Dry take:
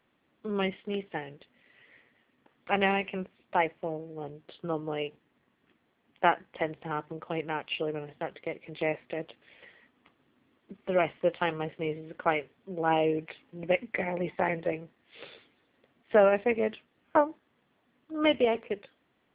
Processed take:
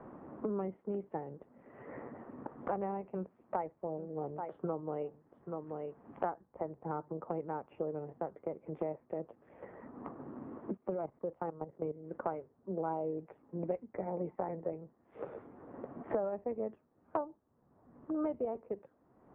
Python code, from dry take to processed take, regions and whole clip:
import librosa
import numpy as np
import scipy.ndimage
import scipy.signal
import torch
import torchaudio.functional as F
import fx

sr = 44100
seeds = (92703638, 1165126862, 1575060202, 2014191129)

y = fx.chain(x, sr, fx.high_shelf(hz=2500.0, db=11.5),
    fx.echo_single(ms=832, db=-17.0), at=(3.14, 6.3))
y = fx.chain(y, sr, fx.high_shelf(hz=2100.0, db=-8.0),
    fx.level_steps(step_db=16), at=(10.75, 12.11))
y = scipy.signal.sosfilt(scipy.signal.butter(4, 1100.0, 'lowpass', fs=sr, output='sos'), y)
y = fx.band_squash(y, sr, depth_pct=100)
y = F.gain(torch.from_numpy(y), -6.5).numpy()